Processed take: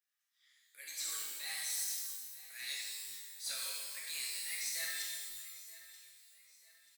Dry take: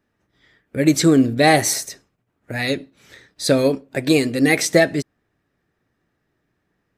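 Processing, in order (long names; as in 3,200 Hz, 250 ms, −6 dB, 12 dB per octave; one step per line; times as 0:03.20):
high-pass filter 1,400 Hz 12 dB per octave
first difference
reversed playback
downward compressor 6 to 1, threshold −33 dBFS, peak gain reduction 15 dB
reversed playback
soft clipping −28 dBFS, distortion −16 dB
on a send: repeating echo 934 ms, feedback 39%, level −17.5 dB
on the sum: reverb with rising layers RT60 1.4 s, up +12 semitones, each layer −2 dB, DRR −4 dB
level −7 dB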